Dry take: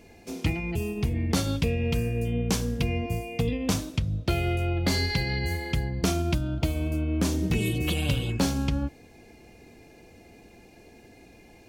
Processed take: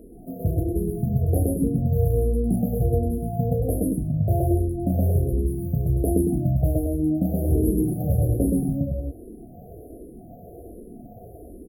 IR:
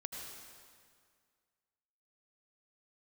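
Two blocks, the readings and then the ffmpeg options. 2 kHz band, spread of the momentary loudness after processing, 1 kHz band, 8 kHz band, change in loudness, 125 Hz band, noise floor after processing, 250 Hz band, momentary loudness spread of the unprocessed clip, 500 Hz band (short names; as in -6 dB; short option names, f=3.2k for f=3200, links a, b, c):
under -40 dB, 21 LU, -0.5 dB, -4.0 dB, +4.0 dB, +5.0 dB, -44 dBFS, +5.0 dB, 4 LU, +5.5 dB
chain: -filter_complex "[0:a]afftfilt=real='re*(1-between(b*sr/4096,760,9700))':imag='im*(1-between(b*sr/4096,760,9700))':win_size=4096:overlap=0.75,aecho=1:1:32.07|122.4|227.4:0.398|1|0.562,asplit=2[a][b];[b]acompressor=threshold=-36dB:ratio=16,volume=1dB[c];[a][c]amix=inputs=2:normalize=0,asplit=2[d][e];[e]afreqshift=-1.3[f];[d][f]amix=inputs=2:normalize=1,volume=3dB"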